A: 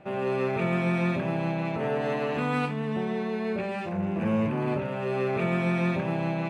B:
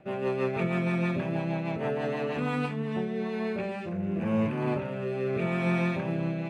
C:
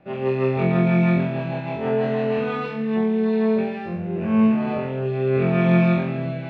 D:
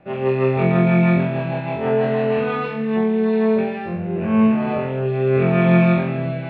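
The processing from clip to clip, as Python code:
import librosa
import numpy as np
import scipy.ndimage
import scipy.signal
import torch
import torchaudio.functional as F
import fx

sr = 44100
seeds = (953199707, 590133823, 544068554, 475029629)

y1 = fx.rotary_switch(x, sr, hz=6.3, then_hz=0.85, switch_at_s=2.41)
y2 = scipy.signal.sosfilt(scipy.signal.butter(4, 5000.0, 'lowpass', fs=sr, output='sos'), y1)
y2 = fx.room_flutter(y2, sr, wall_m=3.9, rt60_s=0.64)
y3 = scipy.signal.sosfilt(scipy.signal.butter(2, 3700.0, 'lowpass', fs=sr, output='sos'), y2)
y3 = fx.peak_eq(y3, sr, hz=240.0, db=-2.5, octaves=1.1)
y3 = y3 * librosa.db_to_amplitude(4.0)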